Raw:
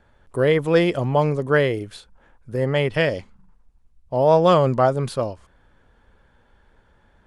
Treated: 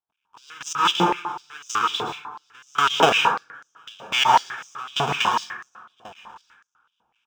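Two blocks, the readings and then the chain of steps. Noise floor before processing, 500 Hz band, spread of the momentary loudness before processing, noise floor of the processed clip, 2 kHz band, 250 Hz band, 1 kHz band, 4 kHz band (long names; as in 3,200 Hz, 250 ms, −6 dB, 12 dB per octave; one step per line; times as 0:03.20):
−59 dBFS, −11.5 dB, 14 LU, −80 dBFS, +2.5 dB, −8.5 dB, +4.5 dB, +10.0 dB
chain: each half-wave held at its own peak
noise gate with hold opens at −47 dBFS
spectral tilt −4 dB per octave
on a send: single-tap delay 797 ms −20.5 dB
on the sum: brickwall limiter −2 dBFS, peak gain reduction 8.5 dB
automatic gain control gain up to 4.5 dB
parametric band 4,000 Hz +7 dB 1.2 octaves
phaser with its sweep stopped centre 2,900 Hz, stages 8
gate pattern ".....x.x." 124 BPM −24 dB
dense smooth reverb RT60 0.99 s, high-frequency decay 0.35×, pre-delay 105 ms, DRR −0.5 dB
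high-pass on a step sequencer 8 Hz 680–6,200 Hz
level +6.5 dB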